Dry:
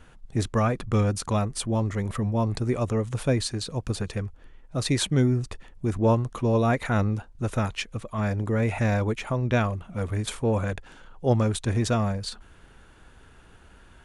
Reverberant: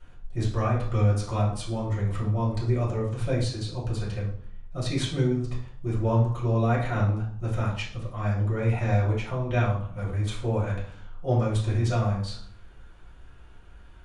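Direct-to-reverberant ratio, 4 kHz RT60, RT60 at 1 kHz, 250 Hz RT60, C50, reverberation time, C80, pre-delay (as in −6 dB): −7.0 dB, 0.45 s, 0.55 s, 0.75 s, 5.0 dB, 0.55 s, 9.5 dB, 3 ms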